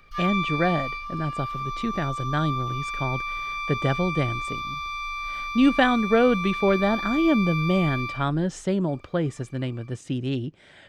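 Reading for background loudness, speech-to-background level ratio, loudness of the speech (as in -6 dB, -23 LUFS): -30.0 LUFS, 4.5 dB, -25.5 LUFS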